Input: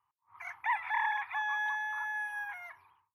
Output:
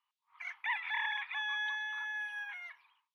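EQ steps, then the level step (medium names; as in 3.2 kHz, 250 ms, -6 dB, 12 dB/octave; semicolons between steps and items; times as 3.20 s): band-pass filter 3.3 kHz, Q 2.2; +8.5 dB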